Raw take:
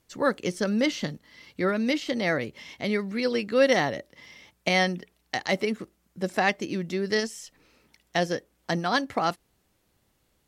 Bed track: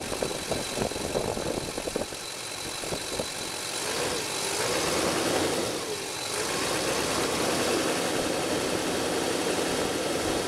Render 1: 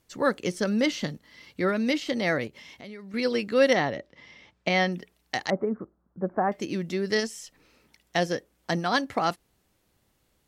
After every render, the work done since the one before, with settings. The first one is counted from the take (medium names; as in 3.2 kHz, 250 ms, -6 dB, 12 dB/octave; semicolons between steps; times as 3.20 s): 2.47–3.14 s: compression 3:1, threshold -44 dBFS; 3.73–4.92 s: distance through air 120 m; 5.50–6.52 s: steep low-pass 1.4 kHz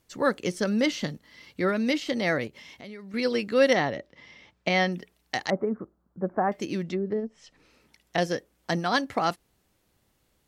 6.82–8.18 s: low-pass that closes with the level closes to 460 Hz, closed at -23.5 dBFS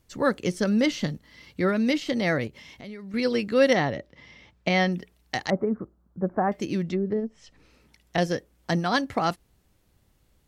bass shelf 140 Hz +11 dB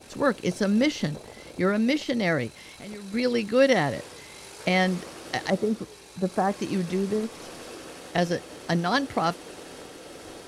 add bed track -15 dB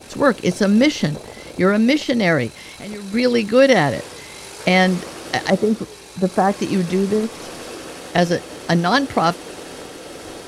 trim +8 dB; peak limiter -2 dBFS, peak gain reduction 2 dB